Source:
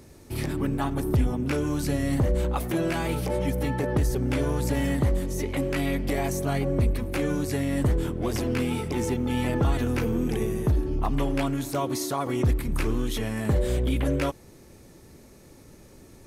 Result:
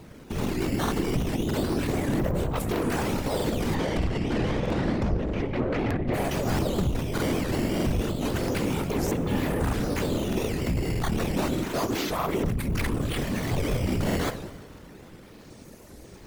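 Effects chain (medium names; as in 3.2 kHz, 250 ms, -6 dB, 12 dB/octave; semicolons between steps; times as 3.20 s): decimation with a swept rate 10×, swing 160% 0.3 Hz; 3.74–6.13 s: low-pass 4.9 kHz -> 1.9 kHz 12 dB/octave; reverberation RT60 1.4 s, pre-delay 4 ms, DRR 12.5 dB; valve stage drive 27 dB, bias 0.35; whisper effect; crackling interface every 0.63 s, samples 2048, repeat, from 0.83 s; warped record 78 rpm, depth 250 cents; trim +4.5 dB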